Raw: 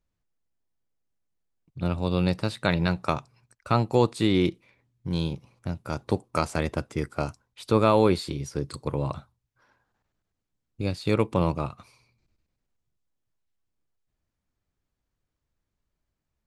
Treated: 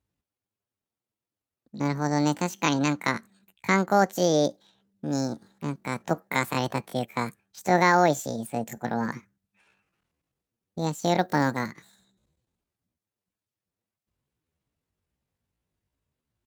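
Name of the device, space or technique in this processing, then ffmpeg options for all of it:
chipmunk voice: -filter_complex "[0:a]asettb=1/sr,asplit=3[a][b][c];[a]atrim=end=11.234[d];[b]atrim=start=11.23:end=11.7,asetpts=PTS-STARTPTS,afade=t=in:d=0.004:c=qsin,afade=t=out:st=0.466:d=0.004:c=qsin,aemphasis=mode=production:type=50kf[e];[c]atrim=start=11.696[f];[d][e]acrossfade=d=0.004:c1=hsin:c2=qsin[g];[g][f]acrossfade=d=0.004:c1=qsin:c2=hsin,asetrate=72056,aresample=44100,atempo=0.612027,highpass=49"

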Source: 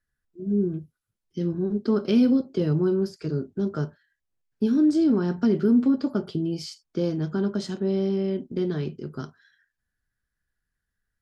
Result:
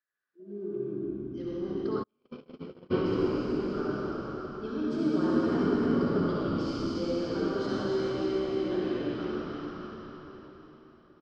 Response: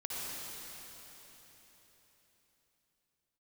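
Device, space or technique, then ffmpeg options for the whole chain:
station announcement: -filter_complex "[0:a]highpass=440,lowpass=3.8k,equalizer=f=1.2k:t=o:w=0.28:g=6,aecho=1:1:69.97|151.6:0.251|0.282[a];[1:a]atrim=start_sample=2205[b];[a][b]afir=irnorm=-1:irlink=0,asplit=6[c][d][e][f][g][h];[d]adelay=294,afreqshift=-70,volume=-4.5dB[i];[e]adelay=588,afreqshift=-140,volume=-12.9dB[j];[f]adelay=882,afreqshift=-210,volume=-21.3dB[k];[g]adelay=1176,afreqshift=-280,volume=-29.7dB[l];[h]adelay=1470,afreqshift=-350,volume=-38.1dB[m];[c][i][j][k][l][m]amix=inputs=6:normalize=0,asplit=3[n][o][p];[n]afade=t=out:st=2.02:d=0.02[q];[o]agate=range=-49dB:threshold=-19dB:ratio=16:detection=peak,afade=t=in:st=2.02:d=0.02,afade=t=out:st=2.9:d=0.02[r];[p]afade=t=in:st=2.9:d=0.02[s];[q][r][s]amix=inputs=3:normalize=0,volume=-2.5dB"

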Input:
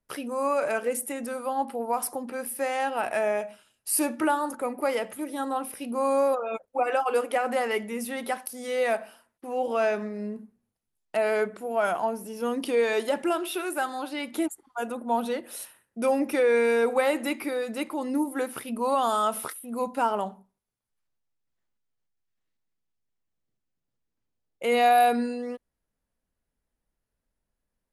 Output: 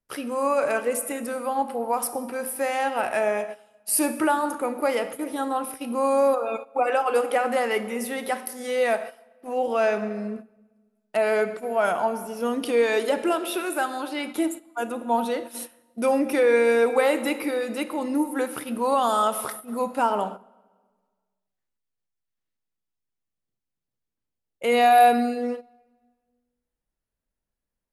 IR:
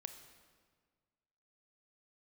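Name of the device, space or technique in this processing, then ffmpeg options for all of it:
keyed gated reverb: -filter_complex "[0:a]asplit=3[a][b][c];[1:a]atrim=start_sample=2205[d];[b][d]afir=irnorm=-1:irlink=0[e];[c]apad=whole_len=1231341[f];[e][f]sidechaingate=range=-13dB:threshold=-39dB:ratio=16:detection=peak,volume=11.5dB[g];[a][g]amix=inputs=2:normalize=0,volume=-7.5dB"

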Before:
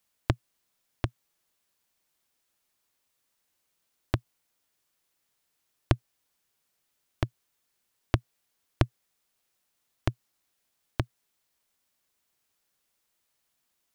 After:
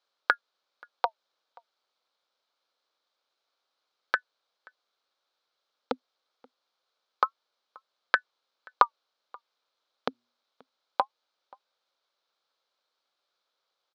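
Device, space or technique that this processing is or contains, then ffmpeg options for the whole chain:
voice changer toy: -filter_complex "[0:a]aeval=exprs='val(0)*sin(2*PI*890*n/s+890*0.85/0.25*sin(2*PI*0.25*n/s))':c=same,highpass=500,equalizer=f=530:t=q:w=4:g=5,equalizer=f=1.3k:t=q:w=4:g=4,equalizer=f=1.9k:t=q:w=4:g=-9,equalizer=f=2.7k:t=q:w=4:g=-7,equalizer=f=4k:t=q:w=4:g=4,lowpass=f=4.6k:w=0.5412,lowpass=f=4.6k:w=1.3066,asettb=1/sr,asplit=3[a][b][c];[a]atrim=end=10.104[d];[b]atrim=start=10.1:end=11.02,asetpts=PTS-STARTPTS,afade=t=in:d=0.004:c=qsin,afade=t=out:st=0.916:d=0.004:c=qsin,bandreject=f=120.3:t=h:w=4,bandreject=f=240.6:t=h:w=4,bandreject=f=360.9:t=h:w=4,bandreject=f=481.2:t=h:w=4,bandreject=f=601.5:t=h:w=4,bandreject=f=721.8:t=h:w=4,bandreject=f=842.1:t=h:w=4,bandreject=f=962.4:t=h:w=4,bandreject=f=1.0827k:t=h:w=4,bandreject=f=1.203k:t=h:w=4,bandreject=f=1.3233k:t=h:w=4,bandreject=f=1.4436k:t=h:w=4,bandreject=f=1.5639k:t=h:w=4,bandreject=f=1.6842k:t=h:w=4,bandreject=f=1.8045k:t=h:w=4,bandreject=f=1.9248k:t=h:w=4,bandreject=f=2.0451k:t=h:w=4,bandreject=f=2.1654k:t=h:w=4,bandreject=f=2.2857k:t=h:w=4,bandreject=f=2.406k:t=h:w=4,bandreject=f=2.5263k:t=h:w=4,bandreject=f=2.6466k:t=h:w=4,bandreject=f=2.7669k:t=h:w=4,bandreject=f=2.8872k:t=h:w=4,bandreject=f=3.0075k:t=h:w=4,bandreject=f=3.1278k:t=h:w=4,bandreject=f=3.2481k:t=h:w=4[e];[c]atrim=start=11.016[f];[d][e]acrossfade=d=0.004:c1=hsin:c2=qsin[g];[g][f]acrossfade=d=0.004:c1=qsin:c2=hsin,asplit=2[h][i];[i]adelay=530.6,volume=-26dB,highshelf=f=4k:g=-11.9[j];[h][j]amix=inputs=2:normalize=0,volume=5.5dB"

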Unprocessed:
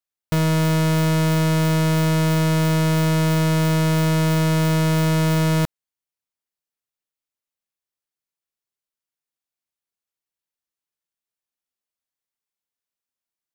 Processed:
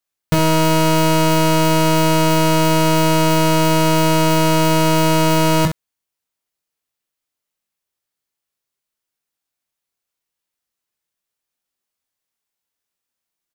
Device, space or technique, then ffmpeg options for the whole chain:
slapback doubling: -filter_complex "[0:a]asplit=3[a][b][c];[b]adelay=22,volume=-5.5dB[d];[c]adelay=65,volume=-8dB[e];[a][d][e]amix=inputs=3:normalize=0,volume=6dB"

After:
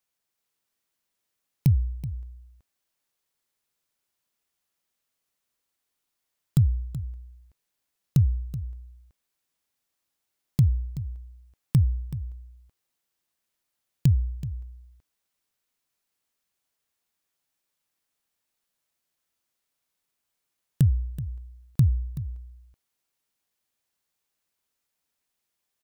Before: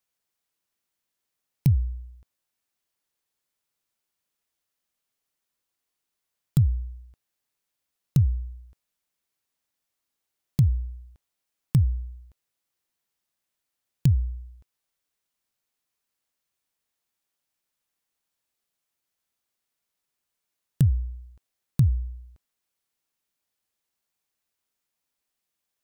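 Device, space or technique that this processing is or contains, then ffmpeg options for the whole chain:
ducked delay: -filter_complex "[0:a]asplit=3[a][b][c];[b]adelay=378,volume=-3.5dB[d];[c]apad=whole_len=1156070[e];[d][e]sidechaincompress=threshold=-33dB:ratio=5:attack=16:release=807[f];[a][f]amix=inputs=2:normalize=0"

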